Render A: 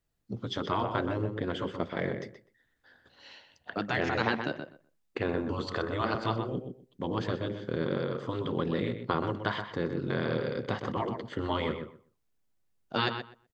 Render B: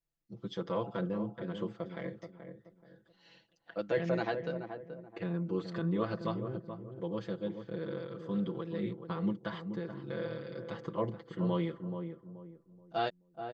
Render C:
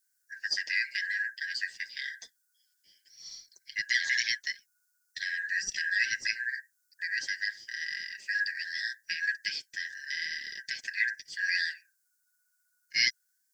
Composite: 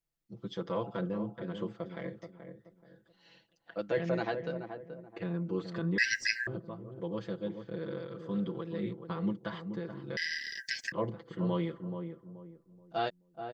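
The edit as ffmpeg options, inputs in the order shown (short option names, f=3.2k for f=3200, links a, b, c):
-filter_complex "[2:a]asplit=2[a][b];[1:a]asplit=3[c][d][e];[c]atrim=end=5.982[f];[a]atrim=start=5.978:end=6.472[g];[d]atrim=start=6.468:end=10.172[h];[b]atrim=start=10.168:end=10.922[i];[e]atrim=start=10.918[j];[f][g]acrossfade=d=0.004:c1=hsin:c2=hsin[k];[k][h]acrossfade=d=0.004:c1=hsin:c2=hsin[l];[l][i]acrossfade=d=0.004:c1=hsin:c2=hsin[m];[m][j]acrossfade=d=0.004:c1=hsin:c2=hsin"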